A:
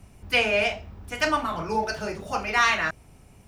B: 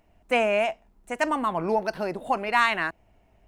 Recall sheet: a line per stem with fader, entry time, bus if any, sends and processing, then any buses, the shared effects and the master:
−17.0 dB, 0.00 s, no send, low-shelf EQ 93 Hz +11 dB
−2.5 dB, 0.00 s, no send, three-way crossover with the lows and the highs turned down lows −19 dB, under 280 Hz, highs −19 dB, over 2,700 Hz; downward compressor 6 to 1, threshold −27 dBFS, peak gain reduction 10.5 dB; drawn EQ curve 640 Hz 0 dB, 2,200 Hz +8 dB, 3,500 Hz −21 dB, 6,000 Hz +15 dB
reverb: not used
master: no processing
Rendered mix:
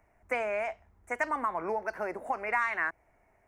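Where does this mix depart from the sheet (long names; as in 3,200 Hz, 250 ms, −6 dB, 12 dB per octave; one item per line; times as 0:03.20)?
stem A −17.0 dB → −28.0 dB
stem B: polarity flipped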